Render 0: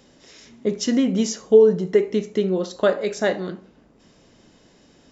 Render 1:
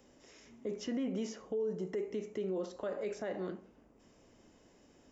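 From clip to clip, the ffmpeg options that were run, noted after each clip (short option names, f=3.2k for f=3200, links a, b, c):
-filter_complex "[0:a]equalizer=f=160:t=o:w=0.67:g=-6,equalizer=f=1.6k:t=o:w=0.67:g=-3,equalizer=f=4k:t=o:w=0.67:g=-10,acrossover=split=240|4400[a][b][c];[a]acompressor=threshold=-35dB:ratio=4[d];[b]acompressor=threshold=-22dB:ratio=4[e];[c]acompressor=threshold=-56dB:ratio=4[f];[d][e][f]amix=inputs=3:normalize=0,alimiter=limit=-21.5dB:level=0:latency=1:release=32,volume=-7.5dB"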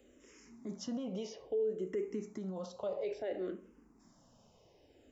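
-filter_complex "[0:a]equalizer=f=1.8k:t=o:w=0.87:g=-4,asplit=2[a][b];[b]afreqshift=-0.59[c];[a][c]amix=inputs=2:normalize=1,volume=2dB"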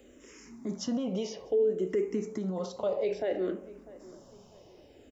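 -filter_complex "[0:a]asplit=2[a][b];[b]adelay=648,lowpass=f=1.7k:p=1,volume=-19dB,asplit=2[c][d];[d]adelay=648,lowpass=f=1.7k:p=1,volume=0.42,asplit=2[e][f];[f]adelay=648,lowpass=f=1.7k:p=1,volume=0.42[g];[a][c][e][g]amix=inputs=4:normalize=0,volume=7.5dB"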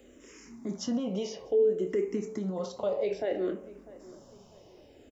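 -filter_complex "[0:a]asplit=2[a][b];[b]adelay=25,volume=-11dB[c];[a][c]amix=inputs=2:normalize=0"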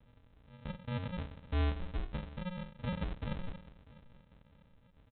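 -af "asuperstop=centerf=1500:order=8:qfactor=0.62,aresample=8000,acrusher=samples=22:mix=1:aa=0.000001,aresample=44100,volume=-7dB"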